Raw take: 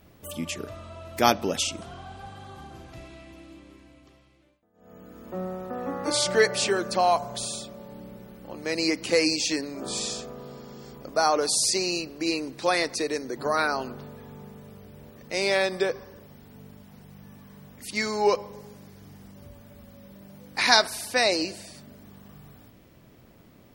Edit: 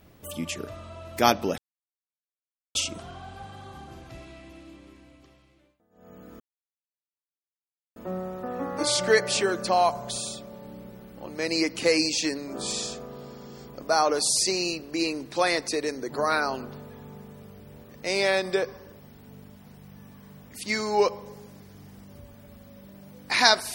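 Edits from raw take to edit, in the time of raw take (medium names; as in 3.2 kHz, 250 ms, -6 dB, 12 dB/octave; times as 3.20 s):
1.58 s: insert silence 1.17 s
5.23 s: insert silence 1.56 s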